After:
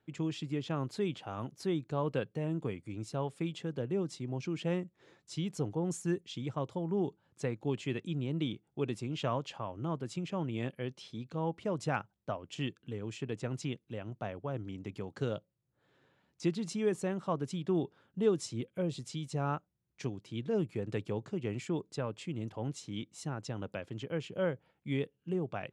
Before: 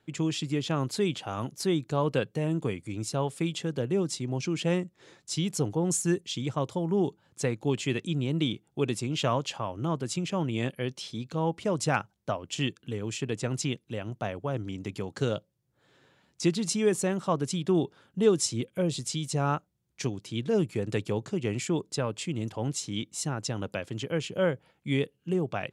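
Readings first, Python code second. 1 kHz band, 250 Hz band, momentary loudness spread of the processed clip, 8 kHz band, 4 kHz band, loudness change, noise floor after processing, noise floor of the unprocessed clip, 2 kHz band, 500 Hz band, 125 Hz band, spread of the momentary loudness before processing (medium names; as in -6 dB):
-6.5 dB, -6.0 dB, 8 LU, -14.5 dB, -10.5 dB, -6.5 dB, -79 dBFS, -73 dBFS, -8.0 dB, -6.0 dB, -6.0 dB, 8 LU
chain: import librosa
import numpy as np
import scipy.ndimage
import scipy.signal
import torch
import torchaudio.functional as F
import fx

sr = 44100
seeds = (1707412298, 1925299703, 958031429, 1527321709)

y = fx.high_shelf(x, sr, hz=4600.0, db=-12.0)
y = F.gain(torch.from_numpy(y), -6.0).numpy()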